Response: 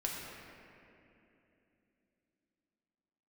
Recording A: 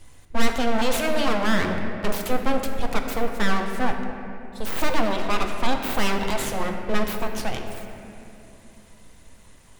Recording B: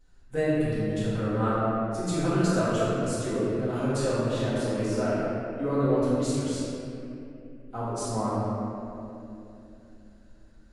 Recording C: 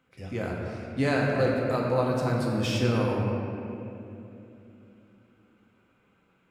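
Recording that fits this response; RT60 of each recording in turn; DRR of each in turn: C; 3.0, 2.9, 2.9 s; 3.5, -12.0, -3.0 dB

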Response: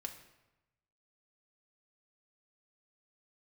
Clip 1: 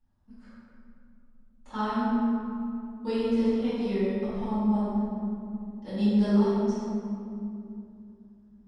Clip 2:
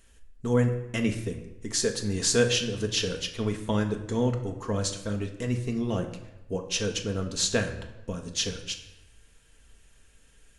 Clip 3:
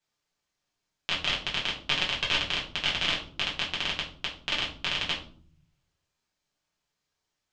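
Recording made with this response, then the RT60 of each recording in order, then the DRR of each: 2; 2.7, 1.0, 0.50 s; -16.5, 3.0, -5.0 dB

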